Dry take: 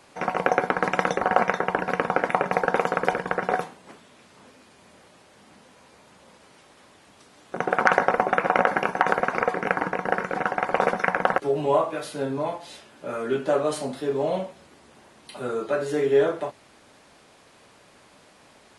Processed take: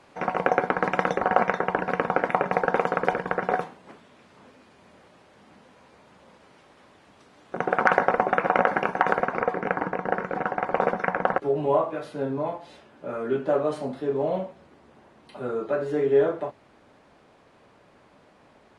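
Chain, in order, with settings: low-pass 2.5 kHz 6 dB/octave, from 9.24 s 1.3 kHz

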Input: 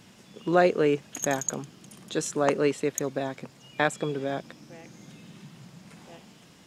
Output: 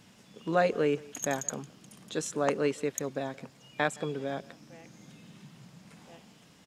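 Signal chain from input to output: band-stop 360 Hz, Q 12; speakerphone echo 170 ms, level -21 dB; trim -4 dB

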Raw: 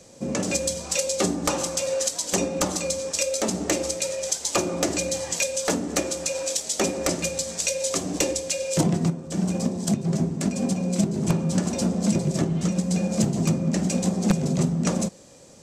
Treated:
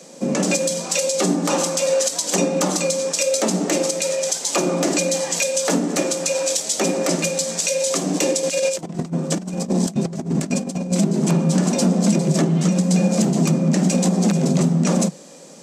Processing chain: Chebyshev high-pass 150 Hz, order 8; 8.43–10.92 s: compressor with a negative ratio -30 dBFS, ratio -0.5; loudness maximiser +15.5 dB; trim -7.5 dB

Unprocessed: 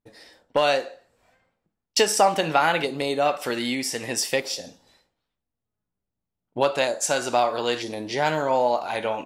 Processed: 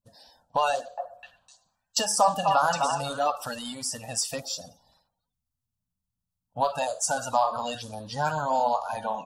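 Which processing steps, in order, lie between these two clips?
coarse spectral quantiser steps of 30 dB; peaking EQ 400 Hz -3 dB 0.79 oct; static phaser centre 880 Hz, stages 4; 0.72–3.25 s: repeats whose band climbs or falls 254 ms, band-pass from 870 Hz, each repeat 1.4 oct, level -2.5 dB

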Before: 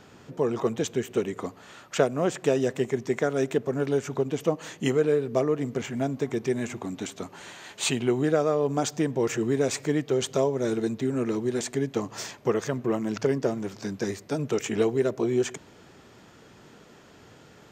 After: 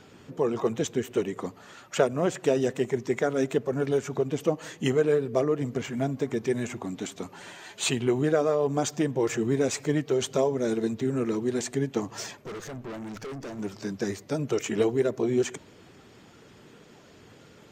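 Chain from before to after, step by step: coarse spectral quantiser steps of 15 dB; 12.42–13.59 s: valve stage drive 35 dB, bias 0.55

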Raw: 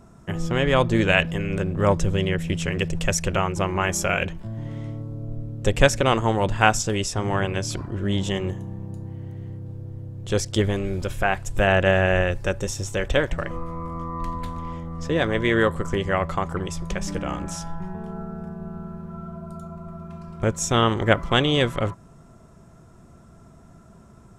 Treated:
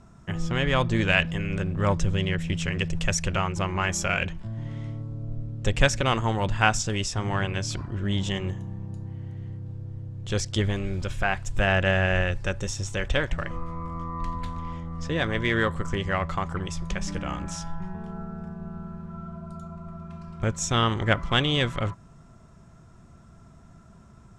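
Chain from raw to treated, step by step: in parallel at -12 dB: saturation -18.5 dBFS, distortion -9 dB; on the sum: low-pass 7.3 kHz 12 dB/octave; peaking EQ 440 Hz -6.5 dB 1.9 oct; trim -2 dB

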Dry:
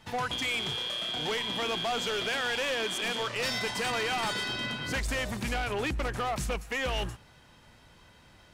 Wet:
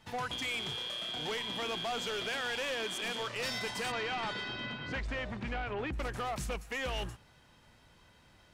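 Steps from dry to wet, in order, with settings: 3.91–5.92 s: low-pass 4.4 kHz -> 2.4 kHz 12 dB/octave; trim -5 dB

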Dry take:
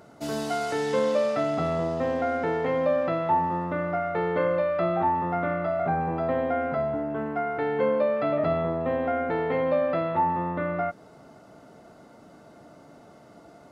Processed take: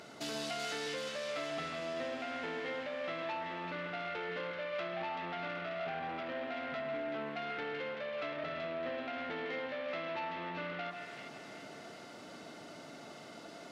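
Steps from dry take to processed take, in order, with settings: compression 6:1, threshold -35 dBFS, peak gain reduction 15 dB; saturation -35 dBFS, distortion -14 dB; frequency weighting D; two-band feedback delay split 1.5 kHz, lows 142 ms, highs 382 ms, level -5 dB; trim -1 dB

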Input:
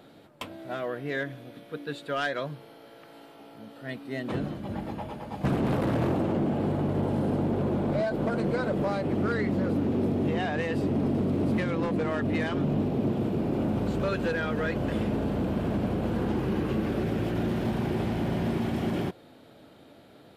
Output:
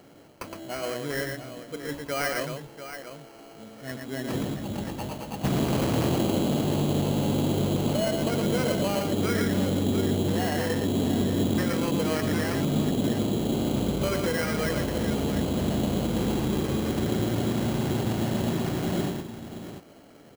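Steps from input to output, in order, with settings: multi-tap echo 115/692 ms -4.5/-10.5 dB; sample-rate reducer 3.6 kHz, jitter 0%

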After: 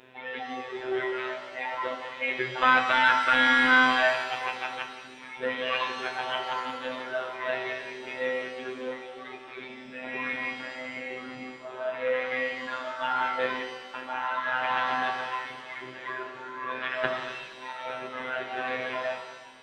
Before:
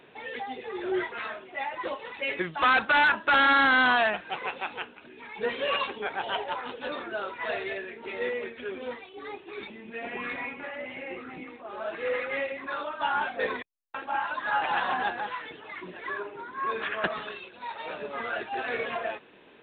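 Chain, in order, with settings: robot voice 128 Hz; pitch-shifted reverb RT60 1.4 s, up +7 st, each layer -8 dB, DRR 3.5 dB; trim +1.5 dB

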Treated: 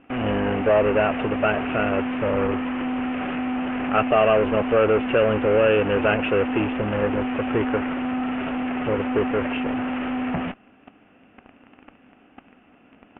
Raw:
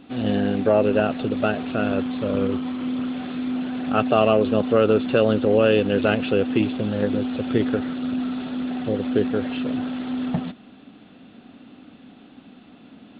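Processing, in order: in parallel at -7 dB: fuzz box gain 38 dB, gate -38 dBFS; on the sum: steep low-pass 2.9 kHz 72 dB/octave; peaking EQ 190 Hz -9 dB 1.7 oct; trim -1.5 dB

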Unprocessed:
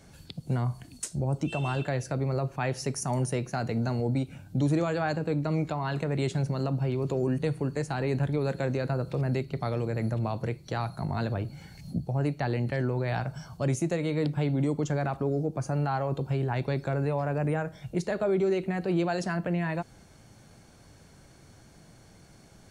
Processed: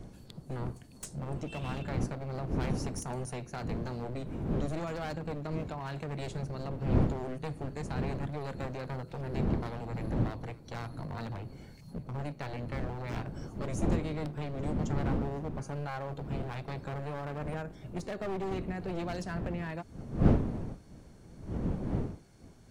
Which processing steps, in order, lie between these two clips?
one-sided wavefolder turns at -27 dBFS; wind noise 230 Hz -29 dBFS; pre-echo 267 ms -22.5 dB; trim -7.5 dB

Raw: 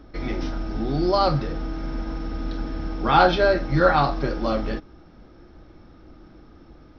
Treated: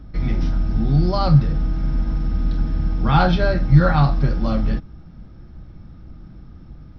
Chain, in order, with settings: resonant low shelf 240 Hz +11.5 dB, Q 1.5; trim -2 dB

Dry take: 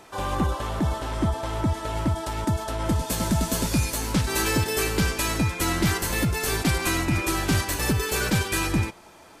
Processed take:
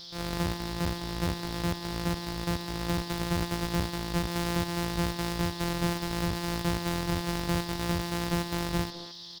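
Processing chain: sorted samples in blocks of 256 samples; speakerphone echo 210 ms, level -6 dB; band noise 3.3–5.4 kHz -39 dBFS; trim -6.5 dB

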